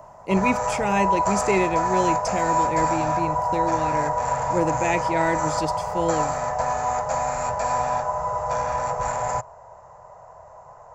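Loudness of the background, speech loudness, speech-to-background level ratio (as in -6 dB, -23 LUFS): -24.5 LUFS, -26.5 LUFS, -2.0 dB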